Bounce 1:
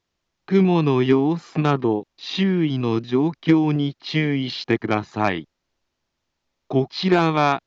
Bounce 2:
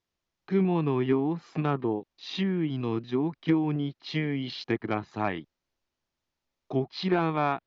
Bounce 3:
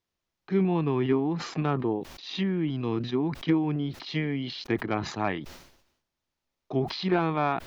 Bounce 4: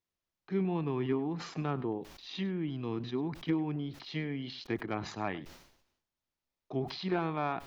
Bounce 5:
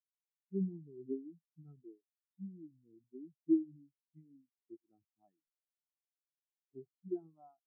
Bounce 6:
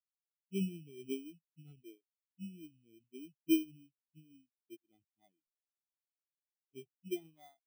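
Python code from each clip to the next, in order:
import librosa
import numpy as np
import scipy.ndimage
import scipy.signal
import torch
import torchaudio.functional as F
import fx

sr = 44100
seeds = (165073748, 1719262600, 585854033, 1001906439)

y1 = fx.env_lowpass_down(x, sr, base_hz=2500.0, full_db=-15.5)
y1 = y1 * 10.0 ** (-8.0 / 20.0)
y2 = fx.sustainer(y1, sr, db_per_s=73.0)
y3 = y2 + 10.0 ** (-19.0 / 20.0) * np.pad(y2, (int(101 * sr / 1000.0), 0))[:len(y2)]
y3 = y3 * 10.0 ** (-7.0 / 20.0)
y4 = fx.spectral_expand(y3, sr, expansion=4.0)
y5 = fx.bit_reversed(y4, sr, seeds[0], block=16)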